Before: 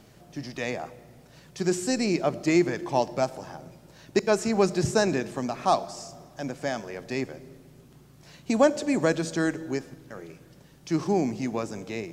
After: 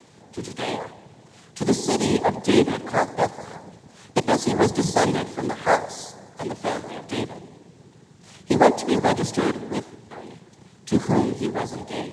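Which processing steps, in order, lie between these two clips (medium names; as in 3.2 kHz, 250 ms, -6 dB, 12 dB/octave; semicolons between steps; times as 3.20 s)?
noise-vocoded speech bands 6; trim +4 dB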